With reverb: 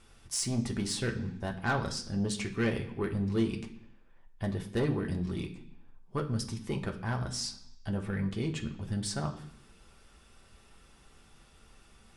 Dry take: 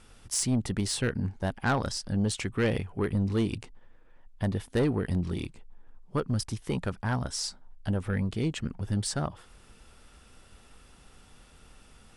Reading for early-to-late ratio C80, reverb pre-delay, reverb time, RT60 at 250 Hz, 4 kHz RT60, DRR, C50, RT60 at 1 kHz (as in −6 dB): 14.5 dB, 3 ms, 0.65 s, 0.85 s, 0.80 s, 1.5 dB, 11.5 dB, 0.65 s